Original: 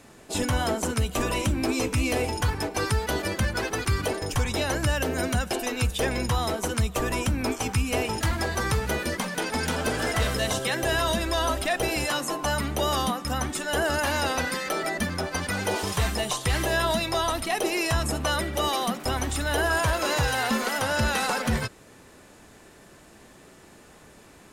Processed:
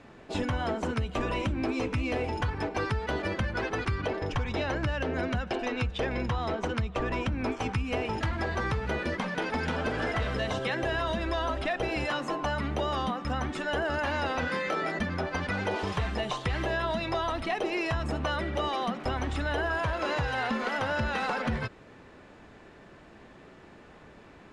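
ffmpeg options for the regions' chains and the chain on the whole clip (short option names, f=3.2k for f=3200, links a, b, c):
-filter_complex "[0:a]asettb=1/sr,asplit=3[a][b][c];[a]atrim=end=3.964[d];[b]atrim=start=3.96:end=7.32,asetpts=PTS-STARTPTS,afade=t=in:d=0.004:c=qsin,afade=t=out:st=3.356:d=0.004:c=qsin,highshelf=f=4.4k:g=5,adynamicsmooth=sensitivity=2.5:basefreq=4.3k[e];[c]atrim=start=7.316[f];[d][e]acrossfade=d=0.004:c1=hsin:c2=qsin[g];[g][f]acrossfade=d=0.004:c1=qsin:c2=hsin,asettb=1/sr,asplit=3[h][i][j];[h]atrim=end=14.404[k];[i]atrim=start=14.4:end=14.99,asetpts=PTS-STARTPTS,afade=t=in:d=0.004:c=qsin,afade=t=out:st=0.586:d=0.004:c=qsin,highpass=54,asplit=2[l][m];[m]adelay=25,volume=-3.5dB[n];[l][n]amix=inputs=2:normalize=0,atrim=end_sample=26019,aeval=exprs='val(0)+0.00282*sin(2*PI*7100*n/s)':c=same[o];[j]atrim=start=14.986[p];[k][o]acrossfade=d=0.004:c1=hsin:c2=qsin[q];[q][p]acrossfade=d=0.004:c1=qsin:c2=hsin,lowpass=3k,acompressor=threshold=-26dB:ratio=6"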